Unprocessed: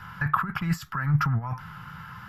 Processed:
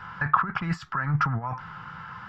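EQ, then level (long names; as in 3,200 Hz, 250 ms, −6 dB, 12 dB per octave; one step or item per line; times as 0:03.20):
bass and treble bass −12 dB, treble +14 dB
head-to-tape spacing loss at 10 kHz 41 dB
+8.0 dB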